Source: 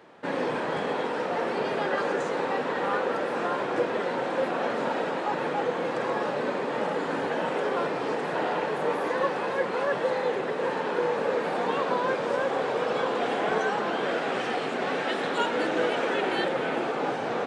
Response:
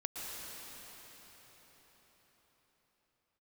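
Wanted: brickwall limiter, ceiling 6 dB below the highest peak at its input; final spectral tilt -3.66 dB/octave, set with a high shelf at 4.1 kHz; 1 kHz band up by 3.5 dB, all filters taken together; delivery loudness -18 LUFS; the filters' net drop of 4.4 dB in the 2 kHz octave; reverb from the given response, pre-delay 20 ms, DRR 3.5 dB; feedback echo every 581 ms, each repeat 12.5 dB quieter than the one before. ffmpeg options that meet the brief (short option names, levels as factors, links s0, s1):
-filter_complex "[0:a]equalizer=f=1000:t=o:g=6.5,equalizer=f=2000:t=o:g=-8,highshelf=f=4100:g=-5.5,alimiter=limit=0.126:level=0:latency=1,aecho=1:1:581|1162|1743:0.237|0.0569|0.0137,asplit=2[s0][s1];[1:a]atrim=start_sample=2205,adelay=20[s2];[s1][s2]afir=irnorm=-1:irlink=0,volume=0.531[s3];[s0][s3]amix=inputs=2:normalize=0,volume=2.51"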